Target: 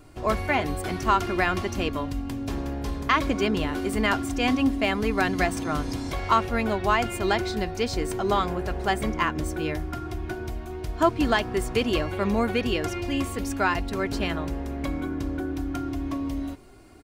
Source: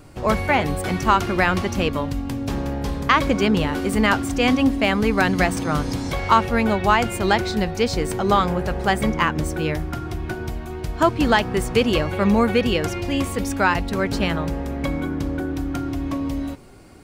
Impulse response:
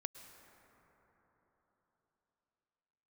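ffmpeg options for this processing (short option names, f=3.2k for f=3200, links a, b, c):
-af "aecho=1:1:2.9:0.4,volume=-5.5dB"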